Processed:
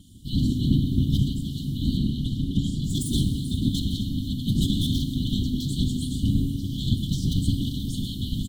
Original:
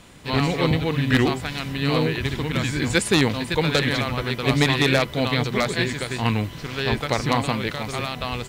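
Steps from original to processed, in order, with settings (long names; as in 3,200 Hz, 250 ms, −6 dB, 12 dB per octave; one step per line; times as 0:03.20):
stylus tracing distortion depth 0.026 ms
brick-wall band-stop 210–3,000 Hz
random phases in short frames
drawn EQ curve 910 Hz 0 dB, 2,200 Hz −3 dB, 4,900 Hz −11 dB, 12,000 Hz −3 dB
single-tap delay 482 ms −18 dB
speech leveller within 4 dB 2 s
0:01.97–0:02.84: high-shelf EQ 11,000 Hz −11 dB
convolution reverb RT60 2.2 s, pre-delay 4 ms, DRR 6 dB
level +1.5 dB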